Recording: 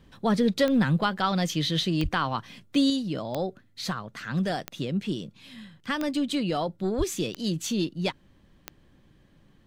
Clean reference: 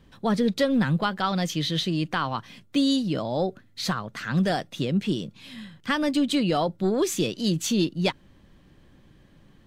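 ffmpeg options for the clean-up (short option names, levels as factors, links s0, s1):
-filter_complex "[0:a]adeclick=t=4,asplit=3[s0][s1][s2];[s0]afade=t=out:st=2.02:d=0.02[s3];[s1]highpass=f=140:w=0.5412,highpass=f=140:w=1.3066,afade=t=in:st=2.02:d=0.02,afade=t=out:st=2.14:d=0.02[s4];[s2]afade=t=in:st=2.14:d=0.02[s5];[s3][s4][s5]amix=inputs=3:normalize=0,asplit=3[s6][s7][s8];[s6]afade=t=out:st=6.97:d=0.02[s9];[s7]highpass=f=140:w=0.5412,highpass=f=140:w=1.3066,afade=t=in:st=6.97:d=0.02,afade=t=out:st=7.09:d=0.02[s10];[s8]afade=t=in:st=7.09:d=0.02[s11];[s9][s10][s11]amix=inputs=3:normalize=0,asetnsamples=n=441:p=0,asendcmd='2.9 volume volume 4dB',volume=1"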